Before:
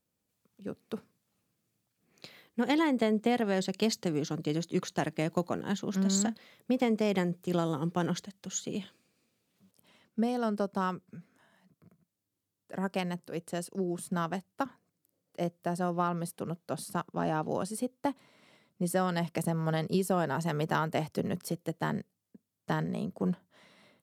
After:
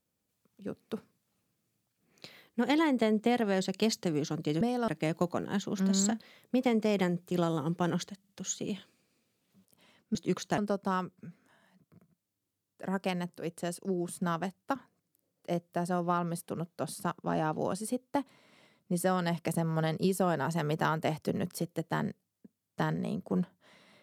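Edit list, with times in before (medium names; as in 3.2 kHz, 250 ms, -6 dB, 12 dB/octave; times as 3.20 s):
4.61–5.04 s: swap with 10.21–10.48 s
8.35 s: stutter 0.05 s, 3 plays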